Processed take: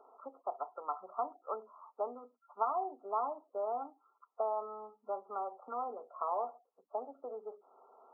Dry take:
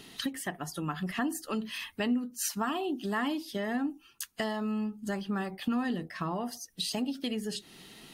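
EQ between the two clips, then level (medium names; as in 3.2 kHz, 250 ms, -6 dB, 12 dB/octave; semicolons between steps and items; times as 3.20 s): steep high-pass 330 Hz 48 dB/octave; brick-wall FIR low-pass 1.4 kHz; static phaser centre 790 Hz, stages 4; +3.0 dB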